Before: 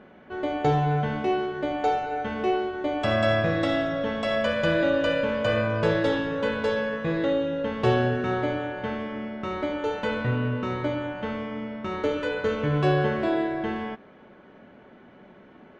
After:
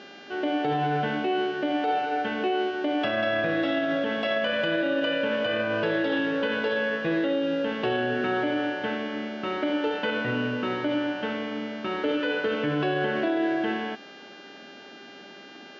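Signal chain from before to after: buzz 400 Hz, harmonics 18, -50 dBFS -2 dB/oct; speaker cabinet 200–4700 Hz, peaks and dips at 300 Hz +7 dB, 690 Hz +3 dB, 1100 Hz -3 dB, 1600 Hz +6 dB, 2900 Hz +8 dB; limiter -17.5 dBFS, peak gain reduction 8 dB

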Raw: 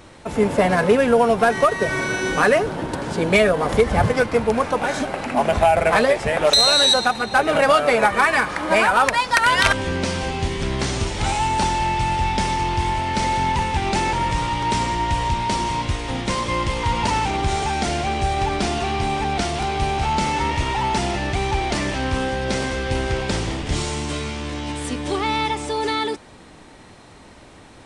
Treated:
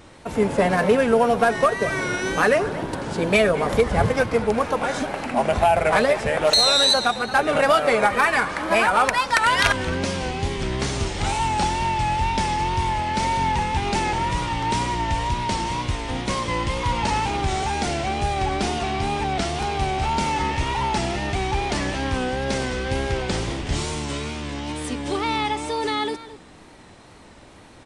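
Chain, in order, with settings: outdoor echo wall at 38 m, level -15 dB; wow and flutter 63 cents; gain -2 dB

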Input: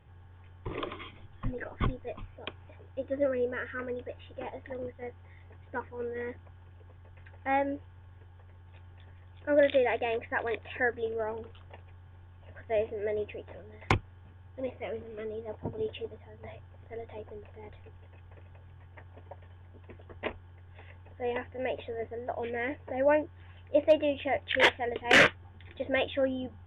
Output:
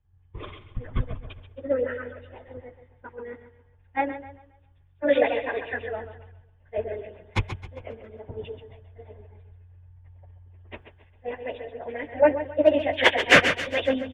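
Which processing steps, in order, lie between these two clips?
feedback echo 0.256 s, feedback 50%, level -8 dB; plain phase-vocoder stretch 0.53×; three-band expander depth 70%; gain +4 dB

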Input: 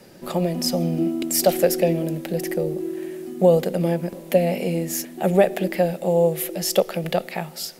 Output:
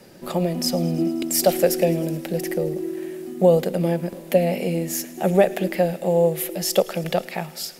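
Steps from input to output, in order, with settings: thin delay 0.107 s, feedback 80%, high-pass 1400 Hz, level -20.5 dB

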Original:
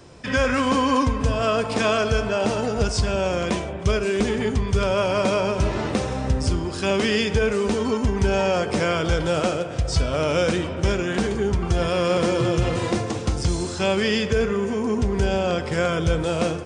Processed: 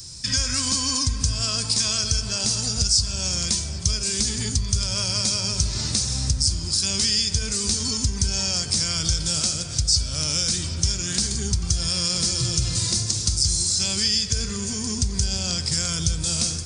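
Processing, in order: EQ curve 110 Hz 0 dB, 500 Hz -22 dB, 3000 Hz -6 dB, 4600 Hz +15 dB; compressor 2.5:1, threshold -26 dBFS, peak gain reduction 11 dB; darkening echo 0.789 s, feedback 74%, low-pass 4700 Hz, level -17 dB; gain +5 dB

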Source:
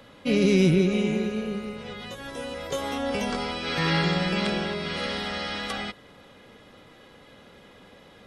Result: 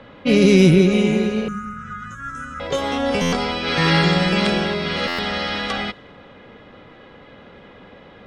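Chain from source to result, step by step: 1.48–2.6 EQ curve 140 Hz 0 dB, 300 Hz -10 dB, 440 Hz -24 dB, 930 Hz -25 dB, 1300 Hz +13 dB, 2100 Hz -11 dB, 4300 Hz -22 dB, 6600 Hz +10 dB, 13000 Hz +3 dB; low-pass opened by the level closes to 2500 Hz, open at -20 dBFS; stuck buffer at 3.21/5.07, samples 512, times 9; gain +7.5 dB

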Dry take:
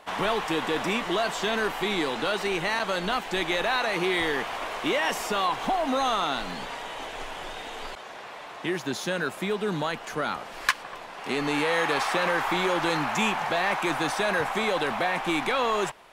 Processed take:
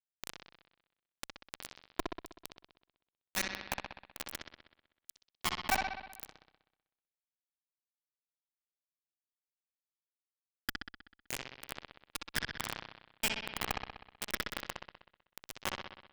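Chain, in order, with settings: random spectral dropouts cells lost 41%; steep high-pass 200 Hz 96 dB/oct; bell 550 Hz -14 dB 0.54 oct; notch 540 Hz, Q 12; comb 3.6 ms, depth 80%; in parallel at -1 dB: compressor 6:1, threshold -38 dBFS, peak gain reduction 19.5 dB; on the sum: LFO band-pass saw down 1 Hz 360–5200 Hz; bit-crush 4-bit; tube stage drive 38 dB, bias 0.7; on a send: analogue delay 63 ms, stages 2048, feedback 63%, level -4 dB; on the sum: gain +15 dB

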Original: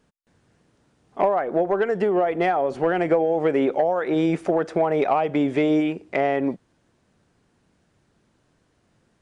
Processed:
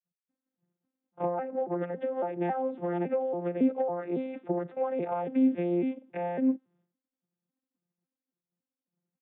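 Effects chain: arpeggiated vocoder bare fifth, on F3, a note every 0.277 s; downsampling 8000 Hz; expander -53 dBFS; gain -7.5 dB

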